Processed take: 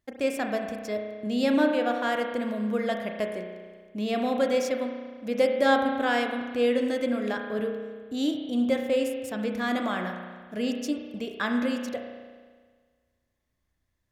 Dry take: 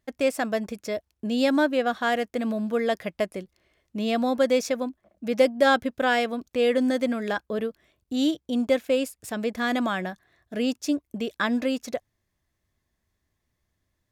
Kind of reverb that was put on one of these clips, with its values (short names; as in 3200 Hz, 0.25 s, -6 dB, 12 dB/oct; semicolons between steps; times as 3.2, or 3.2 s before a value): spring tank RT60 1.6 s, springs 33 ms, chirp 75 ms, DRR 3 dB; gain -4 dB